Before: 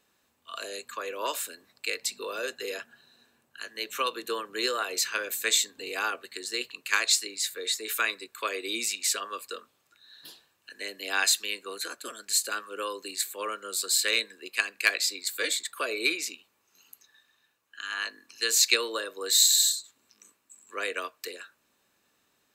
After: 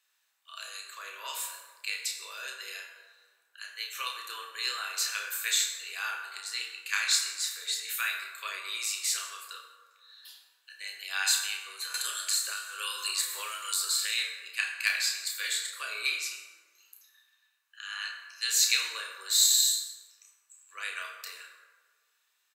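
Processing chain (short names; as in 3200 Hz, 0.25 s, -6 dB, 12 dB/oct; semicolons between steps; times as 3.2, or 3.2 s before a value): HPF 1500 Hz 12 dB/oct; doubler 31 ms -6 dB; plate-style reverb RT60 1.5 s, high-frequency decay 0.5×, DRR 1.5 dB; 11.94–14.18 three-band squash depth 100%; gain -4 dB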